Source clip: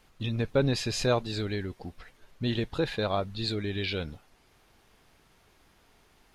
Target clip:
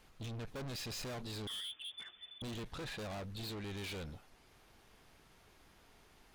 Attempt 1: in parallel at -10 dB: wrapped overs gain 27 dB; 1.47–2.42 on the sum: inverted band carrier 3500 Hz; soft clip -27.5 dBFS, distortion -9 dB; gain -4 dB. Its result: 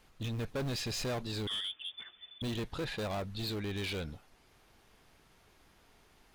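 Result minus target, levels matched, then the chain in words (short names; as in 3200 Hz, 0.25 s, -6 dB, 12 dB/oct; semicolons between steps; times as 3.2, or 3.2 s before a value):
soft clip: distortion -5 dB
in parallel at -10 dB: wrapped overs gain 27 dB; 1.47–2.42 on the sum: inverted band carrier 3500 Hz; soft clip -37.5 dBFS, distortion -4 dB; gain -4 dB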